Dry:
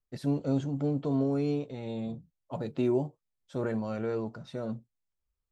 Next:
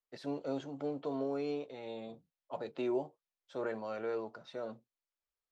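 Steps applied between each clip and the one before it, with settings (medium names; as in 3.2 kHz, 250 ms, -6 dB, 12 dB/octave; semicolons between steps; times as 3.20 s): three-band isolator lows -19 dB, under 350 Hz, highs -16 dB, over 6.2 kHz; trim -1.5 dB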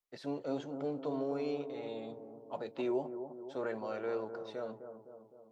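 bucket-brigade echo 256 ms, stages 2048, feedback 57%, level -9 dB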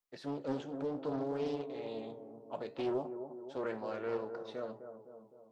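flange 0.62 Hz, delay 9.4 ms, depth 9.1 ms, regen +75%; loudspeaker Doppler distortion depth 0.34 ms; trim +4 dB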